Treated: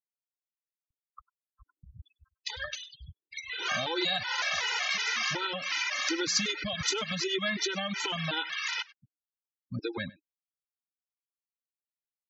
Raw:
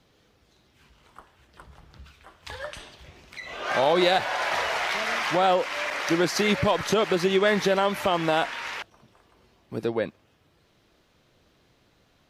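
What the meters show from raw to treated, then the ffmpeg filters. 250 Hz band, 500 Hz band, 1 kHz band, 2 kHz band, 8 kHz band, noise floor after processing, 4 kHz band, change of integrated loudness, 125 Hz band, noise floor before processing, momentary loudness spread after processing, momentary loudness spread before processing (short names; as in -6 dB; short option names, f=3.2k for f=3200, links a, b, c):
-9.5 dB, -14.0 dB, -11.5 dB, -3.5 dB, +3.0 dB, under -85 dBFS, +0.5 dB, -6.0 dB, -7.5 dB, -64 dBFS, 13 LU, 17 LU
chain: -filter_complex "[0:a]equalizer=f=590:w=0.7:g=-11.5,acompressor=threshold=-32dB:ratio=4,highpass=41,highshelf=f=3.4k:g=11,aresample=16000,aresample=44100,afftfilt=real='re*gte(hypot(re,im),0.0141)':imag='im*gte(hypot(re,im),0.0141)':win_size=1024:overlap=0.75,asplit=2[a][b];[b]adelay=99.13,volume=-21dB,highshelf=f=4k:g=-2.23[c];[a][c]amix=inputs=2:normalize=0,afftfilt=real='re*gt(sin(2*PI*2.7*pts/sr)*(1-2*mod(floor(b*sr/1024/260),2)),0)':imag='im*gt(sin(2*PI*2.7*pts/sr)*(1-2*mod(floor(b*sr/1024/260),2)),0)':win_size=1024:overlap=0.75,volume=4.5dB"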